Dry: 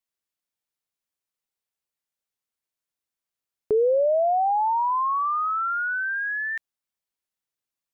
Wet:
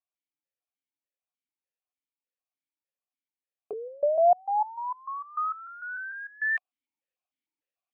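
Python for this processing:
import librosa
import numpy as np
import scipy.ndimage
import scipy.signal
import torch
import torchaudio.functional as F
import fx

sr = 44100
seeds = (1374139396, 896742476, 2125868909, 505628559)

y = fx.rider(x, sr, range_db=10, speed_s=0.5)
y = fx.vowel_held(y, sr, hz=6.7)
y = y * librosa.db_to_amplitude(7.0)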